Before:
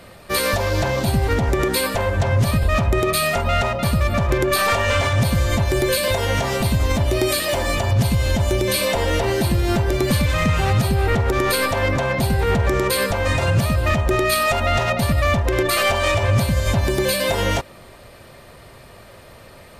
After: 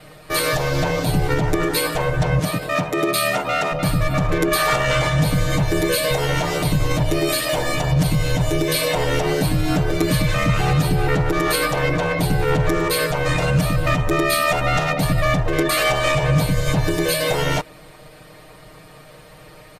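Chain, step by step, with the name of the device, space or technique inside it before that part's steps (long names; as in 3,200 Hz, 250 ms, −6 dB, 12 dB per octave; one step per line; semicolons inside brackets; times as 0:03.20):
0:02.39–0:03.72: high-pass filter 150 Hz 24 dB per octave
ring-modulated robot voice (ring modulation 37 Hz; comb filter 6.5 ms, depth 100%)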